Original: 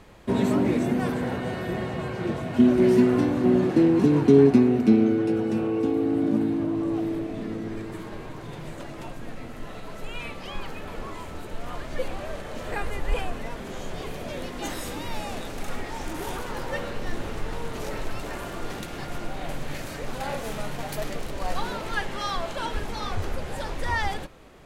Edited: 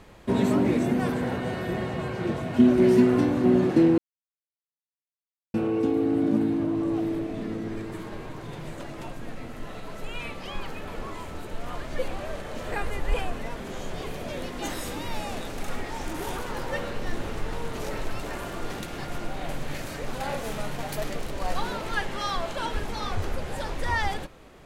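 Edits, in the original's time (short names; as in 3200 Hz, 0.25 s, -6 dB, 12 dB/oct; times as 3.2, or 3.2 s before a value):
3.98–5.54 mute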